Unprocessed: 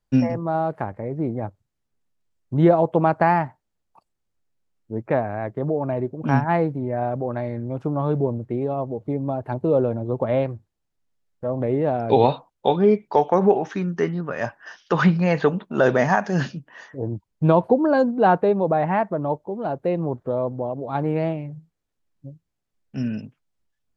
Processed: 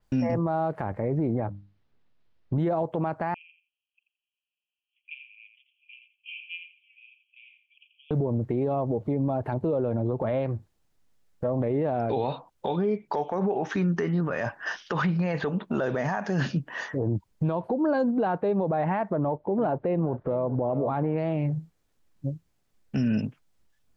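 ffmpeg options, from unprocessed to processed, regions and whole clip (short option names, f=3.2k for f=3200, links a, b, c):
-filter_complex "[0:a]asettb=1/sr,asplit=3[a][b][c];[a]atrim=end=1.404[d];[b]atrim=start=1.4:end=2.58,asetpts=PTS-STARTPTS,afade=t=in:d=0.004:c=qsin,afade=t=out:st=1.176:d=0.004:c=qsin,lowpass=f=4.3k:w=0.5412,lowpass=f=4.3k:w=1.3066,bandreject=f=50:t=h:w=6,bandreject=f=100:t=h:w=6,bandreject=f=150:t=h:w=6,bandreject=f=200:t=h:w=6,bandreject=f=250:t=h:w=6,bandreject=f=300:t=h:w=6[e];[c]atrim=start=2.576[f];[d][e]acrossfade=d=0.004:c1=hsin:c2=qsin[g];[g][f]acrossfade=d=0.004:c1=qsin:c2=hsin,asettb=1/sr,asplit=3[h][i][j];[h]atrim=end=3.344[k];[i]atrim=start=3.34:end=8.11,asetpts=PTS-STARTPTS,afade=t=in:d=0.004:c=qsin,afade=t=out:st=4.766:d=0.004:c=qsin,asuperpass=centerf=2800:order=12:qfactor=3.2,aecho=1:1:85|170|255:0.355|0.0639|0.0115,atrim=end_sample=210357[l];[j]atrim=start=8.106[m];[k][l]acrossfade=d=0.004:c1=hsin:c2=qsin[n];[n][m]acrossfade=d=0.004:c1=qsin:c2=hsin,asettb=1/sr,asplit=3[o][p][q];[o]atrim=end=19.164[r];[p]atrim=start=19.16:end=21.18,asetpts=PTS-STARTPTS,afade=t=in:d=0.004:c=qsin,afade=t=out:st=2.016:d=0.004:c=qsin,lowpass=2.5k,aecho=1:1:419|838:0.126|0.0201,atrim=end_sample=89082,acompressor=mode=upward:threshold=-43dB:ratio=2.5:attack=3.2:release=140:knee=2.83:detection=peak[s];[q]atrim=start=21.176[t];[r][s]acrossfade=d=0.004:c1=hsin:c2=qsin[u];[u][t]acrossfade=d=0.004:c1=qsin:c2=hsin,acompressor=threshold=-27dB:ratio=8,alimiter=level_in=2.5dB:limit=-24dB:level=0:latency=1:release=28,volume=-2.5dB,adynamicequalizer=threshold=0.00112:dfrequency=4900:dqfactor=0.7:tfrequency=4900:tqfactor=0.7:attack=5:release=100:ratio=0.375:range=2.5:mode=cutabove:tftype=highshelf,volume=8.5dB"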